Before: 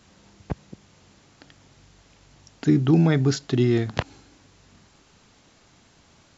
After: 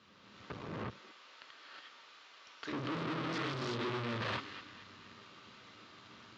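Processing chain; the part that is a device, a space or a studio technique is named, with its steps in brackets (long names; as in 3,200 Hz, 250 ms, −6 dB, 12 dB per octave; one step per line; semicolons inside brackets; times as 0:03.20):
0:00.62–0:02.73: high-pass filter 650 Hz 12 dB per octave
delay with a high-pass on its return 232 ms, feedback 49%, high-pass 1,400 Hz, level −17 dB
reverb whose tail is shaped and stops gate 390 ms rising, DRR −7.5 dB
guitar amplifier (tube saturation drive 32 dB, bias 0.75; bass and treble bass −9 dB, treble +12 dB; loudspeaker in its box 92–3,600 Hz, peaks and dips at 110 Hz +5 dB, 210 Hz +4 dB, 750 Hz −8 dB, 1,200 Hz +7 dB)
level −2 dB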